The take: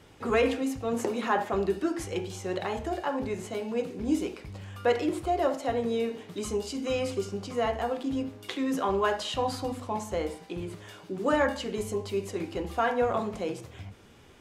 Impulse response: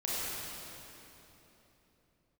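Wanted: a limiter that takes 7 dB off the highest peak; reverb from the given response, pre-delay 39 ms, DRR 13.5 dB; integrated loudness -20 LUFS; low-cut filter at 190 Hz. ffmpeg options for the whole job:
-filter_complex "[0:a]highpass=190,alimiter=limit=-20.5dB:level=0:latency=1,asplit=2[a][b];[1:a]atrim=start_sample=2205,adelay=39[c];[b][c]afir=irnorm=-1:irlink=0,volume=-20.5dB[d];[a][d]amix=inputs=2:normalize=0,volume=12dB"

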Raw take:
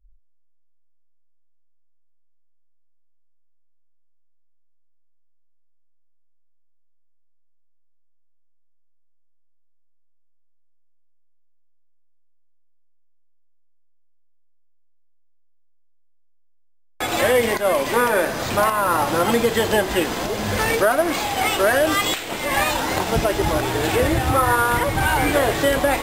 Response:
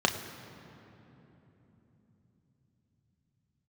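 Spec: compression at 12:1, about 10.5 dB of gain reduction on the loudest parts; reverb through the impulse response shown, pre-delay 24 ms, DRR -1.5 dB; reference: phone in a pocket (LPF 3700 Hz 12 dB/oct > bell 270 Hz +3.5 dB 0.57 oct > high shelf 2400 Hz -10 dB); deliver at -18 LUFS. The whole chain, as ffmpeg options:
-filter_complex "[0:a]acompressor=threshold=-24dB:ratio=12,asplit=2[a][b];[1:a]atrim=start_sample=2205,adelay=24[c];[b][c]afir=irnorm=-1:irlink=0,volume=-10.5dB[d];[a][d]amix=inputs=2:normalize=0,lowpass=3.7k,equalizer=f=270:t=o:w=0.57:g=3.5,highshelf=f=2.4k:g=-10,volume=7dB"

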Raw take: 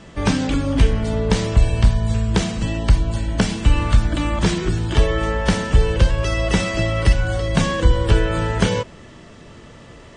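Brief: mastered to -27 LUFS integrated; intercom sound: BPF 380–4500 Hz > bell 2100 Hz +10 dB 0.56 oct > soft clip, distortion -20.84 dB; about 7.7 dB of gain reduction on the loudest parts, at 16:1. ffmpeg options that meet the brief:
-af "acompressor=threshold=-15dB:ratio=16,highpass=380,lowpass=4.5k,equalizer=f=2.1k:t=o:w=0.56:g=10,asoftclip=threshold=-12.5dB,volume=-1.5dB"

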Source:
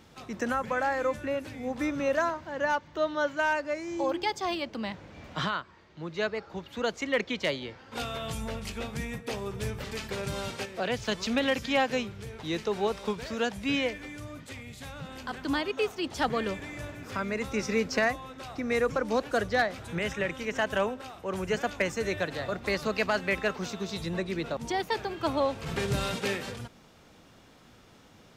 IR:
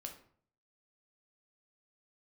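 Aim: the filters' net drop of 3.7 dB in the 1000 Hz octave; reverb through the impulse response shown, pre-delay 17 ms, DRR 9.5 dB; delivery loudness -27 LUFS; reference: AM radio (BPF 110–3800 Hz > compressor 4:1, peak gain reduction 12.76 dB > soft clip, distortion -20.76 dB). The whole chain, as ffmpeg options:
-filter_complex "[0:a]equalizer=f=1k:t=o:g=-5,asplit=2[a][b];[1:a]atrim=start_sample=2205,adelay=17[c];[b][c]afir=irnorm=-1:irlink=0,volume=-6dB[d];[a][d]amix=inputs=2:normalize=0,highpass=110,lowpass=3.8k,acompressor=threshold=-37dB:ratio=4,asoftclip=threshold=-30.5dB,volume=14.5dB"

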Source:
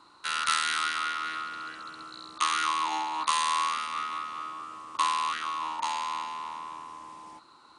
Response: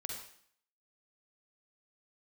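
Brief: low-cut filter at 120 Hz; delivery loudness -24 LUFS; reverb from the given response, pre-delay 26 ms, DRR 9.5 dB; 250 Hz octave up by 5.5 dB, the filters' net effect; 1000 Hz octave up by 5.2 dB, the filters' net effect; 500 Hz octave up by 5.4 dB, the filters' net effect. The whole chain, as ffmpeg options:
-filter_complex "[0:a]highpass=120,equalizer=f=250:t=o:g=5.5,equalizer=f=500:t=o:g=4,equalizer=f=1k:t=o:g=5,asplit=2[a][b];[1:a]atrim=start_sample=2205,adelay=26[c];[b][c]afir=irnorm=-1:irlink=0,volume=-8.5dB[d];[a][d]amix=inputs=2:normalize=0,volume=2dB"

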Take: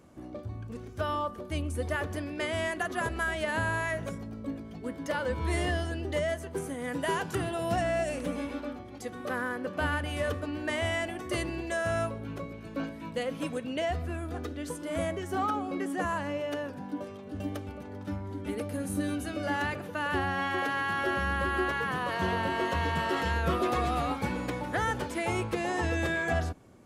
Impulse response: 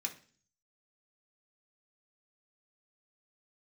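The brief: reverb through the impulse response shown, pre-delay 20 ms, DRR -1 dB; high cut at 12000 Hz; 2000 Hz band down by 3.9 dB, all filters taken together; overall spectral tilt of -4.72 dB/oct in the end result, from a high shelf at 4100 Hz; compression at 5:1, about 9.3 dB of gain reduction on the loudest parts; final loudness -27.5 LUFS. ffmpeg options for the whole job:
-filter_complex "[0:a]lowpass=12k,equalizer=f=2k:t=o:g=-6,highshelf=f=4.1k:g=5.5,acompressor=threshold=-36dB:ratio=5,asplit=2[a][b];[1:a]atrim=start_sample=2205,adelay=20[c];[b][c]afir=irnorm=-1:irlink=0,volume=0.5dB[d];[a][d]amix=inputs=2:normalize=0,volume=9.5dB"

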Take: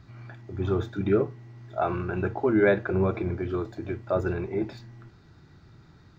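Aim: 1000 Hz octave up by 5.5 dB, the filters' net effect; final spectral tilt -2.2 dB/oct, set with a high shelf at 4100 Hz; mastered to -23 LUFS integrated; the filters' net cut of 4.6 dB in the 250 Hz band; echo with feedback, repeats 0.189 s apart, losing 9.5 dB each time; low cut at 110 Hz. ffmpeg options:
-af "highpass=110,equalizer=f=250:t=o:g=-8,equalizer=f=1k:t=o:g=8,highshelf=f=4.1k:g=6,aecho=1:1:189|378|567|756:0.335|0.111|0.0365|0.012,volume=5dB"

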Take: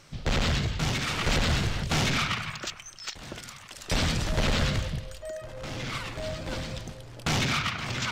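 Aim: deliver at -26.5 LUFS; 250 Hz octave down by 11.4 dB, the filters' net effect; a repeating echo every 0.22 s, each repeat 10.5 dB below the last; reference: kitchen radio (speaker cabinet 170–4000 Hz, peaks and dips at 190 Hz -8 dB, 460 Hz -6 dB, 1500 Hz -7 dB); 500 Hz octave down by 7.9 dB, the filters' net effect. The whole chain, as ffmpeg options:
-af "highpass=170,equalizer=f=190:t=q:w=4:g=-8,equalizer=f=460:t=q:w=4:g=-6,equalizer=f=1.5k:t=q:w=4:g=-7,lowpass=f=4k:w=0.5412,lowpass=f=4k:w=1.3066,equalizer=f=250:t=o:g=-8.5,equalizer=f=500:t=o:g=-5.5,aecho=1:1:220|440|660:0.299|0.0896|0.0269,volume=6.5dB"

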